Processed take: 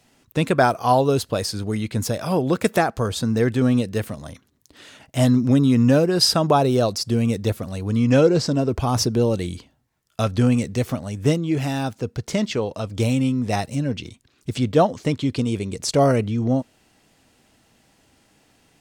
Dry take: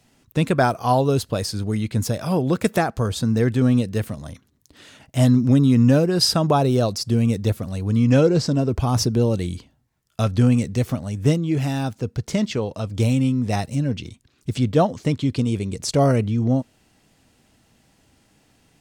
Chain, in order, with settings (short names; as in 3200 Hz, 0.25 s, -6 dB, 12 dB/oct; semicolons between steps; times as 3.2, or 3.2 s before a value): tone controls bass -5 dB, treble -1 dB; gain +2 dB